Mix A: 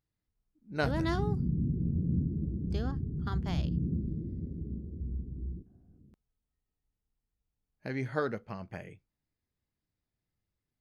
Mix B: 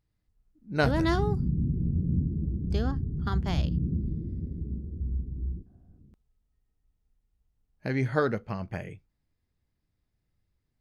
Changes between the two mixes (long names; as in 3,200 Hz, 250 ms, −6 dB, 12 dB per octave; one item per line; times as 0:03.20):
speech +5.5 dB
master: add low-shelf EQ 88 Hz +9 dB